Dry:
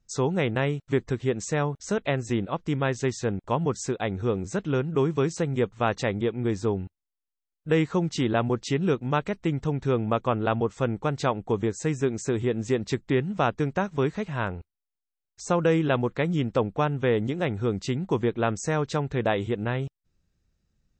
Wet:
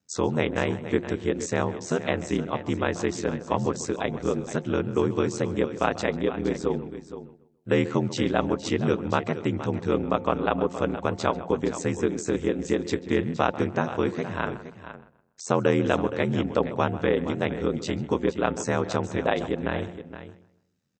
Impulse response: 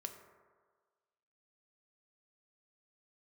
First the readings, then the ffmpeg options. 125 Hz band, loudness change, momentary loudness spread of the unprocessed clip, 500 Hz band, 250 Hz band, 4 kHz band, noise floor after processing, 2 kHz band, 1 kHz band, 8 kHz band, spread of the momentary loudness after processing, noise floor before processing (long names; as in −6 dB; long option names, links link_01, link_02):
−3.5 dB, 0.0 dB, 4 LU, +0.5 dB, +0.5 dB, +1.0 dB, −61 dBFS, +1.0 dB, +1.0 dB, +0.5 dB, 5 LU, below −85 dBFS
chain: -filter_complex "[0:a]highpass=frequency=140:width=0.5412,highpass=frequency=140:width=1.3066,asplit=2[link_01][link_02];[link_02]adelay=141,lowpass=frequency=2500:poles=1,volume=-15dB,asplit=2[link_03][link_04];[link_04]adelay=141,lowpass=frequency=2500:poles=1,volume=0.34,asplit=2[link_05][link_06];[link_06]adelay=141,lowpass=frequency=2500:poles=1,volume=0.34[link_07];[link_03][link_05][link_07]amix=inputs=3:normalize=0[link_08];[link_01][link_08]amix=inputs=2:normalize=0,aeval=exprs='val(0)*sin(2*PI*41*n/s)':channel_layout=same,bandreject=frequency=176.4:width_type=h:width=4,bandreject=frequency=352.8:width_type=h:width=4,bandreject=frequency=529.2:width_type=h:width=4,bandreject=frequency=705.6:width_type=h:width=4,bandreject=frequency=882:width_type=h:width=4,asplit=2[link_09][link_10];[link_10]aecho=0:1:468:0.237[link_11];[link_09][link_11]amix=inputs=2:normalize=0,volume=3.5dB"